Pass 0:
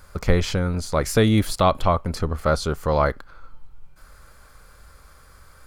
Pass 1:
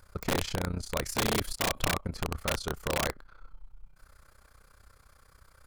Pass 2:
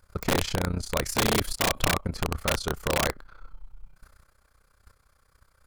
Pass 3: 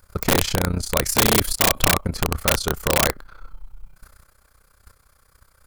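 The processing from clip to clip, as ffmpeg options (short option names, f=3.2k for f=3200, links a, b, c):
-af "tremolo=f=31:d=0.857,aeval=exprs='(mod(5.96*val(0)+1,2)-1)/5.96':c=same,volume=-5.5dB"
-af "agate=range=-10dB:threshold=-53dB:ratio=16:detection=peak,volume=4.5dB"
-af "highshelf=f=9.1k:g=9,volume=5.5dB"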